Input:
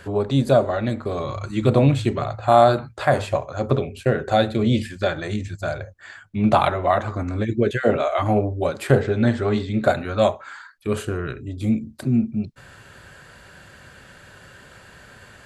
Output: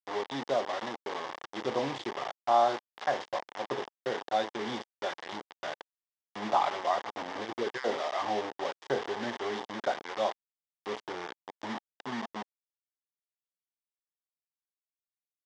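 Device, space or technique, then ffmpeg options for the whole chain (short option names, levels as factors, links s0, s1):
hand-held game console: -af "acrusher=bits=3:mix=0:aa=0.000001,highpass=460,equalizer=f=600:t=q:w=4:g=-6,equalizer=f=860:t=q:w=4:g=4,equalizer=f=1400:t=q:w=4:g=-7,equalizer=f=2500:t=q:w=4:g=-9,equalizer=f=4200:t=q:w=4:g=-8,lowpass=f=4700:w=0.5412,lowpass=f=4700:w=1.3066,volume=0.422"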